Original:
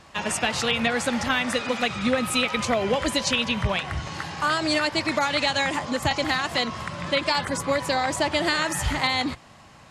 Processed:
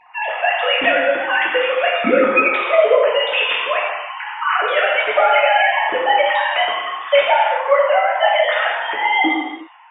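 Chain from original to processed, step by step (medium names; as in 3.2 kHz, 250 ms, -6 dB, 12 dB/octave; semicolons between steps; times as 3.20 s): formants replaced by sine waves; gated-style reverb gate 400 ms falling, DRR -5 dB; trim +2.5 dB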